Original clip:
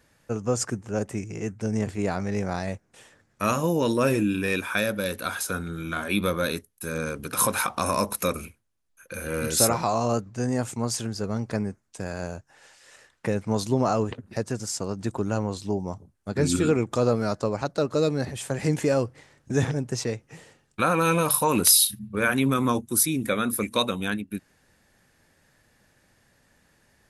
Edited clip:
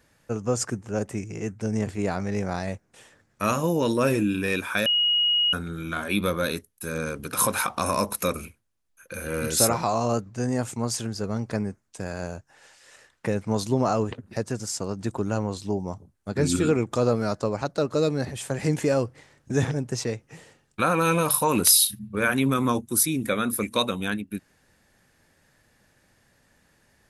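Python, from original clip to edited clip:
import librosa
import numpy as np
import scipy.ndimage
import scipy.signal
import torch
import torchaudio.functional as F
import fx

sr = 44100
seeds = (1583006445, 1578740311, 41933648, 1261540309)

y = fx.edit(x, sr, fx.bleep(start_s=4.86, length_s=0.67, hz=2890.0, db=-18.5), tone=tone)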